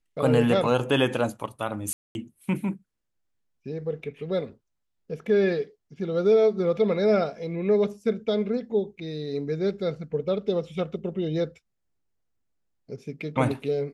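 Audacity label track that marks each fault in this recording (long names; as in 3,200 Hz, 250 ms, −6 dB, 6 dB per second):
1.930000	2.150000	drop-out 221 ms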